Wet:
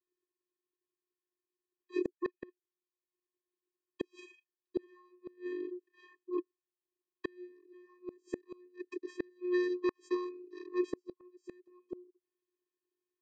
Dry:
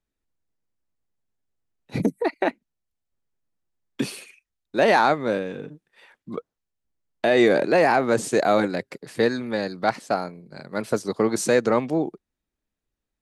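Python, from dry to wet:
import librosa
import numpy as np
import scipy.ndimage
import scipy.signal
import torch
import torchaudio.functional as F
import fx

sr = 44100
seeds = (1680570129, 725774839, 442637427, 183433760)

y = fx.vocoder(x, sr, bands=16, carrier='square', carrier_hz=359.0)
y = fx.gate_flip(y, sr, shuts_db=-21.0, range_db=-37)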